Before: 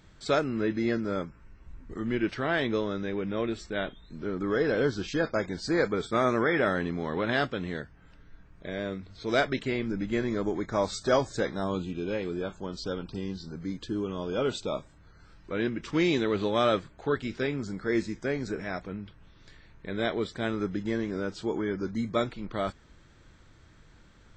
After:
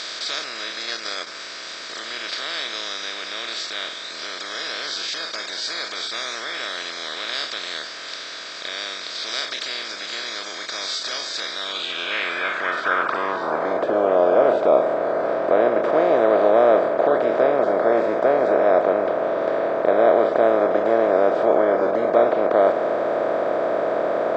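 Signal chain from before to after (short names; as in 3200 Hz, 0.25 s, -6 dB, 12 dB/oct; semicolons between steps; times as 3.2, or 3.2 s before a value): per-bin compression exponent 0.2; 0.86–1.27 transient shaper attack +11 dB, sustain -11 dB; band-pass sweep 4700 Hz -> 640 Hz, 11.49–13.91; gain +7 dB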